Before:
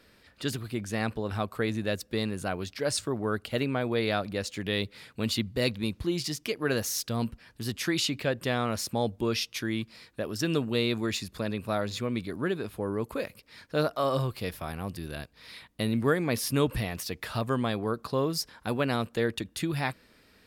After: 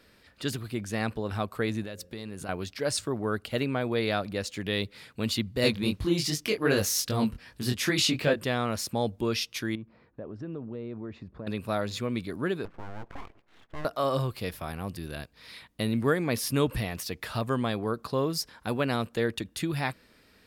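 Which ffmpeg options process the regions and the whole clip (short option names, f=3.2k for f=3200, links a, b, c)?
-filter_complex "[0:a]asettb=1/sr,asplit=3[a][b][c];[a]atrim=end=1.834[d];[b]atrim=start=1.83:end=2.49,asetpts=PTS-STARTPTS,afade=t=in:d=0.004:c=qsin,afade=t=out:st=0.656:d=0.004:c=qsin,bandreject=f=89.11:t=h:w=4,bandreject=f=178.22:t=h:w=4,bandreject=f=267.33:t=h:w=4,bandreject=f=356.44:t=h:w=4,bandreject=f=445.55:t=h:w=4,bandreject=f=534.66:t=h:w=4,acompressor=threshold=-34dB:ratio=10:attack=3.2:release=140:knee=1:detection=peak[e];[c]atrim=start=2.486[f];[d][e]acrossfade=d=0.004:c1=hsin:c2=qsin[g];[g][f]acrossfade=d=0.004:c1=qsin:c2=hsin,asettb=1/sr,asplit=3[h][i][j];[h]atrim=end=5.624[k];[i]atrim=start=5.62:end=8.43,asetpts=PTS-STARTPTS,afade=t=in:d=0.004:c=qsin,afade=t=out:st=2.806:d=0.004:c=qsin,acontrast=74,flanger=delay=19.5:depth=5.4:speed=2.6[l];[j]atrim=start=8.426[m];[k][l]acrossfade=d=0.004:c1=hsin:c2=qsin[n];[n][m]acrossfade=d=0.004:c1=qsin:c2=hsin,asettb=1/sr,asplit=3[o][p][q];[o]atrim=end=9.754[r];[p]atrim=start=9.75:end=11.47,asetpts=PTS-STARTPTS,afade=t=in:d=0.004:c=qsin,afade=t=out:st=1.716:d=0.004:c=qsin,lowpass=1k,acompressor=threshold=-38dB:ratio=2.5:attack=3.2:release=140:knee=1:detection=peak[s];[q]atrim=start=11.466[t];[r][s]acrossfade=d=0.004:c1=hsin:c2=qsin[u];[u][t]acrossfade=d=0.004:c1=qsin:c2=hsin,asettb=1/sr,asplit=3[v][w][x];[v]atrim=end=12.654[y];[w]atrim=start=12.65:end=13.85,asetpts=PTS-STARTPTS,afade=t=in:d=0.004:c=qsin,afade=t=out:st=1.196:d=0.004:c=qsin,lowpass=f=1.7k:w=0.5412,lowpass=f=1.7k:w=1.3066,acompressor=threshold=-38dB:ratio=2:attack=3.2:release=140:knee=1:detection=peak,aeval=exprs='abs(val(0))':c=same[z];[x]atrim=start=13.846[aa];[y][z]acrossfade=d=0.004:c1=hsin:c2=qsin[ab];[ab][aa]acrossfade=d=0.004:c1=qsin:c2=hsin"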